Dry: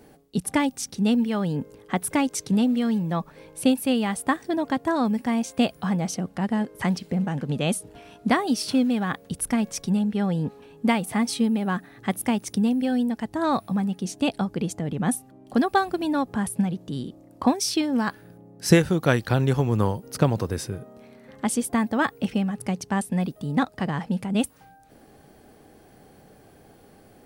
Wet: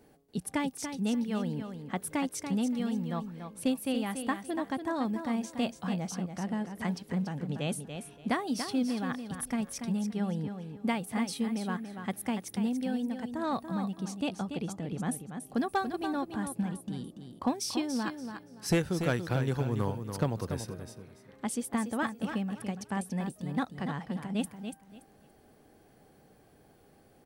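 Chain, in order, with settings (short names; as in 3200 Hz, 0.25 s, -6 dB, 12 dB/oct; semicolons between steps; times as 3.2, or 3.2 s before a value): hard clip -10.5 dBFS, distortion -24 dB; on a send: feedback echo 0.286 s, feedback 23%, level -8 dB; on the sum: gain -9 dB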